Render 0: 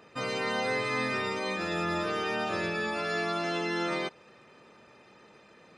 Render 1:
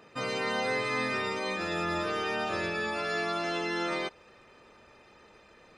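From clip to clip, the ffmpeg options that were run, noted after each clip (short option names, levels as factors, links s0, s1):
-af "asubboost=boost=9:cutoff=53"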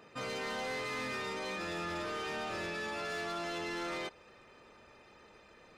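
-af "asoftclip=type=tanh:threshold=0.0224,volume=0.794"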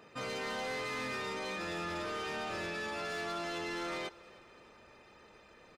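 -af "aecho=1:1:305|610|915:0.0794|0.0389|0.0191"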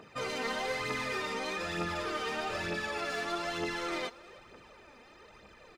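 -af "aphaser=in_gain=1:out_gain=1:delay=4.4:decay=0.52:speed=1.1:type=triangular,volume=1.26"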